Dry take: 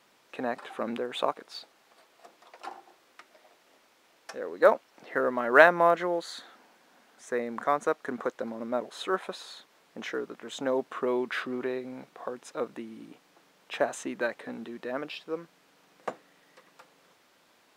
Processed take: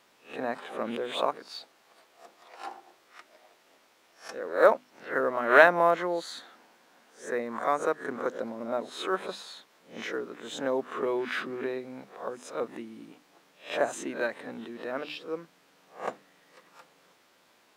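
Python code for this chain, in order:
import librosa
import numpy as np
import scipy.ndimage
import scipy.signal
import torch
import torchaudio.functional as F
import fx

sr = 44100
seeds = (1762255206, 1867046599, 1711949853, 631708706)

y = fx.spec_swells(x, sr, rise_s=0.33)
y = fx.hum_notches(y, sr, base_hz=50, count=6)
y = F.gain(torch.from_numpy(y), -1.0).numpy()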